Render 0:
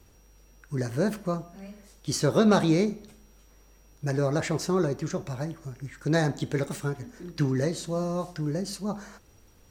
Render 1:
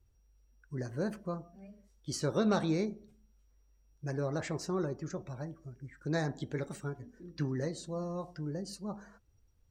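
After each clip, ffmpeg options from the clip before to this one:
-af "afftdn=nr=14:nf=-47,volume=-8.5dB"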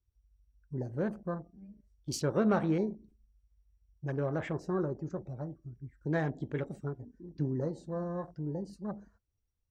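-af "afwtdn=0.00562,volume=1.5dB"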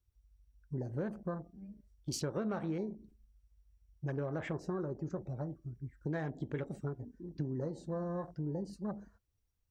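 -af "acompressor=threshold=-35dB:ratio=6,volume=1.5dB"

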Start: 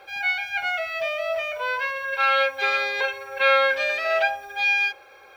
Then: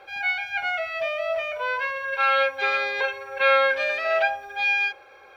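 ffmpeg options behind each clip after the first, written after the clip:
-af "aemphasis=mode=reproduction:type=cd"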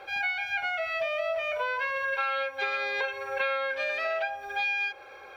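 -af "acompressor=threshold=-29dB:ratio=10,volume=2.5dB"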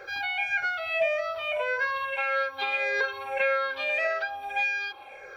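-af "afftfilt=real='re*pow(10,12/40*sin(2*PI*(0.55*log(max(b,1)*sr/1024/100)/log(2)-(-1.7)*(pts-256)/sr)))':imag='im*pow(10,12/40*sin(2*PI*(0.55*log(max(b,1)*sr/1024/100)/log(2)-(-1.7)*(pts-256)/sr)))':win_size=1024:overlap=0.75"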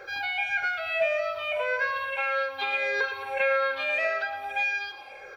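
-af "aecho=1:1:111|222|333|444|555|666:0.237|0.133|0.0744|0.0416|0.0233|0.0131"

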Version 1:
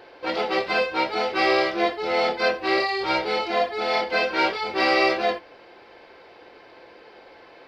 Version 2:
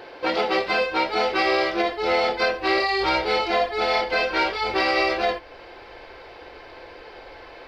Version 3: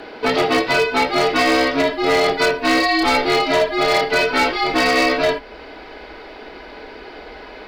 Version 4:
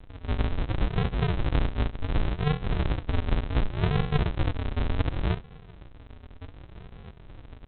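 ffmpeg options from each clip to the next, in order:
-af "asubboost=boost=9:cutoff=59,alimiter=limit=-18dB:level=0:latency=1:release=335,volume=6dB"
-af "aeval=exprs='0.168*(abs(mod(val(0)/0.168+3,4)-2)-1)':c=same,afreqshift=-66,volume=6dB"
-af "flanger=delay=20:depth=3.1:speed=2,aresample=8000,acrusher=samples=37:mix=1:aa=0.000001:lfo=1:lforange=22.2:lforate=0.68,aresample=44100,volume=-5dB"

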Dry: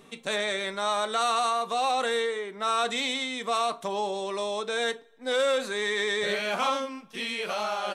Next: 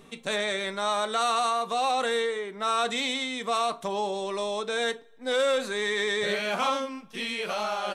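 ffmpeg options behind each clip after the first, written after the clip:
-af "lowshelf=f=110:g=9"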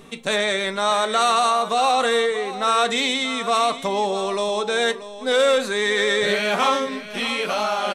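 -af "aecho=1:1:634:0.211,volume=7dB"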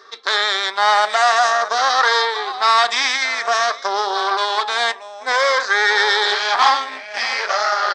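-af "afftfilt=real='re*pow(10,11/40*sin(2*PI*(0.58*log(max(b,1)*sr/1024/100)/log(2)-(-0.51)*(pts-256)/sr)))':imag='im*pow(10,11/40*sin(2*PI*(0.58*log(max(b,1)*sr/1024/100)/log(2)-(-0.51)*(pts-256)/sr)))':win_size=1024:overlap=0.75,aeval=exprs='0.562*(cos(1*acos(clip(val(0)/0.562,-1,1)))-cos(1*PI/2))+0.112*(cos(6*acos(clip(val(0)/0.562,-1,1)))-cos(6*PI/2))':c=same,highpass=f=460:w=0.5412,highpass=f=460:w=1.3066,equalizer=f=510:t=q:w=4:g=-9,equalizer=f=810:t=q:w=4:g=4,equalizer=f=1.2k:t=q:w=4:g=5,equalizer=f=1.7k:t=q:w=4:g=7,equalizer=f=2.7k:t=q:w=4:g=-7,equalizer=f=5k:t=q:w=4:g=9,lowpass=f=6k:w=0.5412,lowpass=f=6k:w=1.3066"

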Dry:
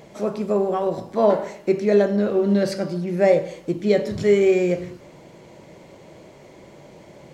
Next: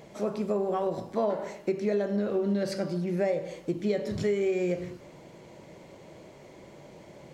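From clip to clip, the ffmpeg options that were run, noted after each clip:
-af "acompressor=threshold=-20dB:ratio=6,volume=-4dB"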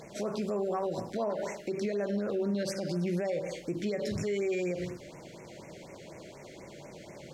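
-af "equalizer=f=4.5k:w=0.34:g=6,alimiter=level_in=1dB:limit=-24dB:level=0:latency=1:release=72,volume=-1dB,afftfilt=real='re*(1-between(b*sr/1024,940*pow(4000/940,0.5+0.5*sin(2*PI*4.1*pts/sr))/1.41,940*pow(4000/940,0.5+0.5*sin(2*PI*4.1*pts/sr))*1.41))':imag='im*(1-between(b*sr/1024,940*pow(4000/940,0.5+0.5*sin(2*PI*4.1*pts/sr))/1.41,940*pow(4000/940,0.5+0.5*sin(2*PI*4.1*pts/sr))*1.41))':win_size=1024:overlap=0.75,volume=1dB"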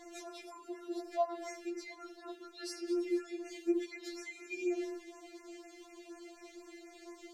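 -af "afftfilt=real='re*4*eq(mod(b,16),0)':imag='im*4*eq(mod(b,16),0)':win_size=2048:overlap=0.75,volume=-2dB"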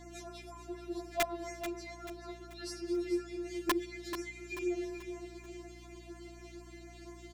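-filter_complex "[0:a]aeval=exprs='val(0)+0.00224*(sin(2*PI*60*n/s)+sin(2*PI*2*60*n/s)/2+sin(2*PI*3*60*n/s)/3+sin(2*PI*4*60*n/s)/4+sin(2*PI*5*60*n/s)/5)':c=same,aeval=exprs='(mod(15*val(0)+1,2)-1)/15':c=same,asplit=2[a][b];[b]aecho=0:1:436|872|1308|1744:0.316|0.133|0.0558|0.0234[c];[a][c]amix=inputs=2:normalize=0"

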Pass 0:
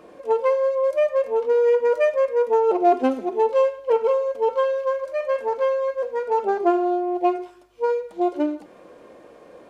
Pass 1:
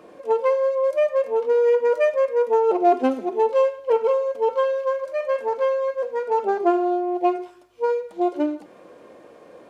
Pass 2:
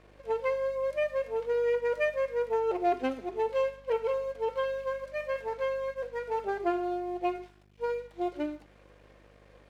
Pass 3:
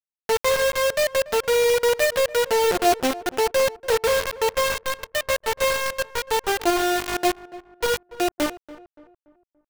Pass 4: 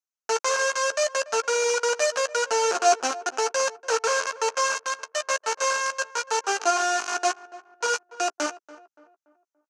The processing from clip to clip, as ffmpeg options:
-af "highpass=75"
-af "equalizer=f=125:t=o:w=1:g=-10,equalizer=f=1k:t=o:w=1:g=-3,equalizer=f=2k:t=o:w=1:g=8,equalizer=f=4k:t=o:w=1:g=4,aeval=exprs='val(0)+0.00562*(sin(2*PI*50*n/s)+sin(2*PI*2*50*n/s)/2+sin(2*PI*3*50*n/s)/3+sin(2*PI*4*50*n/s)/4+sin(2*PI*5*50*n/s)/5)':c=same,aeval=exprs='sgn(val(0))*max(abs(val(0))-0.00376,0)':c=same,volume=-9dB"
-filter_complex "[0:a]acrusher=bits=4:mix=0:aa=0.000001,asplit=2[a][b];[b]adelay=287,lowpass=f=1.5k:p=1,volume=-17dB,asplit=2[c][d];[d]adelay=287,lowpass=f=1.5k:p=1,volume=0.42,asplit=2[e][f];[f]adelay=287,lowpass=f=1.5k:p=1,volume=0.42,asplit=2[g][h];[h]adelay=287,lowpass=f=1.5k:p=1,volume=0.42[i];[a][c][e][g][i]amix=inputs=5:normalize=0,volume=7.5dB"
-filter_complex "[0:a]highpass=f=340:w=0.5412,highpass=f=340:w=1.3066,equalizer=f=350:t=q:w=4:g=-9,equalizer=f=520:t=q:w=4:g=-8,equalizer=f=1.4k:t=q:w=4:g=6,equalizer=f=2k:t=q:w=4:g=-9,equalizer=f=3.5k:t=q:w=4:g=-10,equalizer=f=6.3k:t=q:w=4:g=9,lowpass=f=7.6k:w=0.5412,lowpass=f=7.6k:w=1.3066,asplit=2[a][b];[b]adelay=13,volume=-11.5dB[c];[a][c]amix=inputs=2:normalize=0"

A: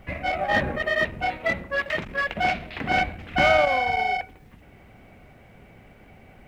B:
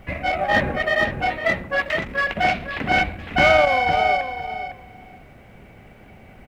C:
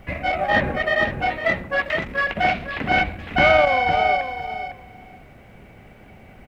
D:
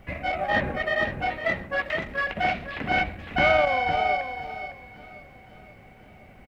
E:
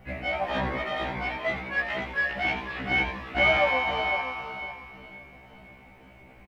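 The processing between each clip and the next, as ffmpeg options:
-filter_complex "[0:a]asplit=2[a][b];[b]adelay=506,lowpass=f=3.7k:p=1,volume=-9dB,asplit=2[c][d];[d]adelay=506,lowpass=f=3.7k:p=1,volume=0.16[e];[a][c][e]amix=inputs=3:normalize=0,volume=3.5dB"
-filter_complex "[0:a]acrossover=split=4600[a][b];[b]acompressor=threshold=-50dB:ratio=4:attack=1:release=60[c];[a][c]amix=inputs=2:normalize=0"
-af "aecho=1:1:526|1052|1578|2104|2630:0.1|0.058|0.0336|0.0195|0.0113,volume=-5dB"
-filter_complex "[0:a]asplit=7[a][b][c][d][e][f][g];[b]adelay=86,afreqshift=140,volume=-9dB[h];[c]adelay=172,afreqshift=280,volume=-14.2dB[i];[d]adelay=258,afreqshift=420,volume=-19.4dB[j];[e]adelay=344,afreqshift=560,volume=-24.6dB[k];[f]adelay=430,afreqshift=700,volume=-29.8dB[l];[g]adelay=516,afreqshift=840,volume=-35dB[m];[a][h][i][j][k][l][m]amix=inputs=7:normalize=0,afftfilt=real='re*1.73*eq(mod(b,3),0)':imag='im*1.73*eq(mod(b,3),0)':win_size=2048:overlap=0.75"

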